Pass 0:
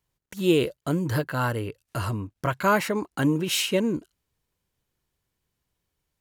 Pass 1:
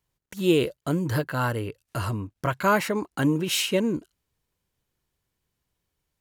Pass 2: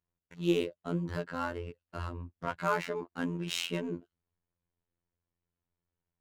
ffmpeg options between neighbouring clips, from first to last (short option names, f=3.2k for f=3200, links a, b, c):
-af anull
-af "adynamicsmooth=sensitivity=5:basefreq=2.2k,afftfilt=real='hypot(re,im)*cos(PI*b)':imag='0':win_size=2048:overlap=0.75,volume=-5dB"